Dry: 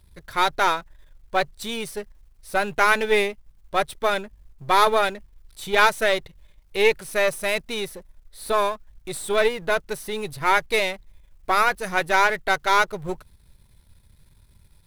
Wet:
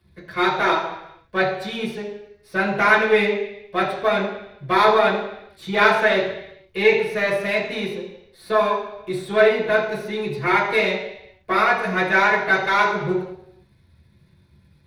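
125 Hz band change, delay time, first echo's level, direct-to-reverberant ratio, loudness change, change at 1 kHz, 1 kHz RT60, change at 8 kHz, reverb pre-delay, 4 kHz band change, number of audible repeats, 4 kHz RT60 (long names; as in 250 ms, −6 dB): +7.5 dB, no echo audible, no echo audible, −7.5 dB, +2.5 dB, +1.0 dB, 0.80 s, can't be measured, 3 ms, −0.5 dB, no echo audible, 0.85 s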